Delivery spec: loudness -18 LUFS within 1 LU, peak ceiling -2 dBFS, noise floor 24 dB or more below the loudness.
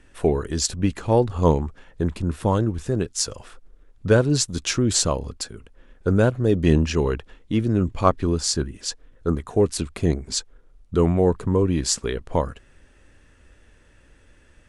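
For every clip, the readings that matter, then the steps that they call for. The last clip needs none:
loudness -22.5 LUFS; peak -2.0 dBFS; loudness target -18.0 LUFS
-> gain +4.5 dB; limiter -2 dBFS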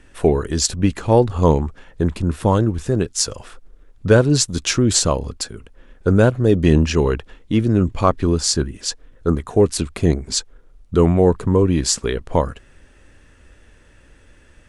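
loudness -18.5 LUFS; peak -2.0 dBFS; noise floor -51 dBFS

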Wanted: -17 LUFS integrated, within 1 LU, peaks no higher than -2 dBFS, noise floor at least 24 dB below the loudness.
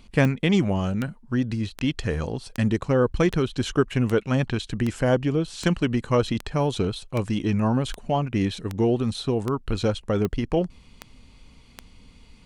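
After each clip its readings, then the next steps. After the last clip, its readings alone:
clicks 16; loudness -25.0 LUFS; peak -6.0 dBFS; loudness target -17.0 LUFS
-> de-click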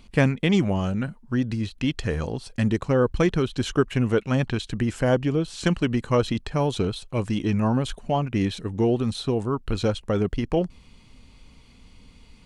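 clicks 0; loudness -25.0 LUFS; peak -6.0 dBFS; loudness target -17.0 LUFS
-> gain +8 dB; limiter -2 dBFS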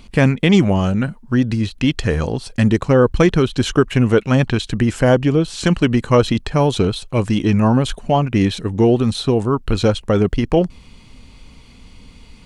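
loudness -17.0 LUFS; peak -2.0 dBFS; noise floor -44 dBFS

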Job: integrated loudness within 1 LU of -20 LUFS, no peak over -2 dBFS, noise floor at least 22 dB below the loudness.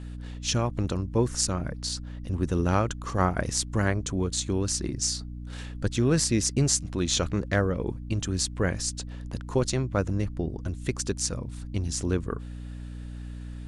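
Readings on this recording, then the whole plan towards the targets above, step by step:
hum 60 Hz; harmonics up to 300 Hz; hum level -35 dBFS; loudness -28.0 LUFS; peak -7.0 dBFS; loudness target -20.0 LUFS
-> de-hum 60 Hz, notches 5; gain +8 dB; limiter -2 dBFS

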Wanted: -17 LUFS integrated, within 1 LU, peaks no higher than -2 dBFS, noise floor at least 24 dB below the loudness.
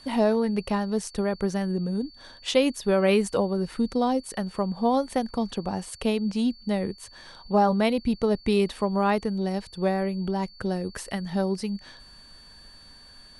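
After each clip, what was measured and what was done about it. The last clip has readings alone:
steady tone 4500 Hz; tone level -49 dBFS; loudness -26.0 LUFS; peak -8.5 dBFS; loudness target -17.0 LUFS
-> notch 4500 Hz, Q 30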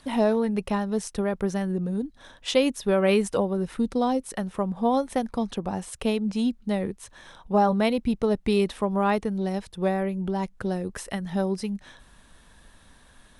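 steady tone none; loudness -26.5 LUFS; peak -8.5 dBFS; loudness target -17.0 LUFS
-> gain +9.5 dB; limiter -2 dBFS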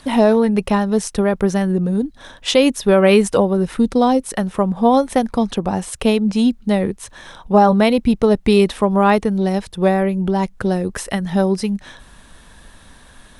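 loudness -17.0 LUFS; peak -2.0 dBFS; noise floor -46 dBFS

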